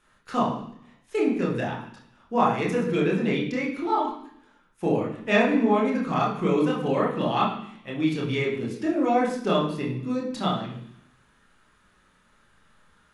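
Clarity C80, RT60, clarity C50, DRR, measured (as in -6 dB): 8.5 dB, 0.70 s, 4.5 dB, -3.5 dB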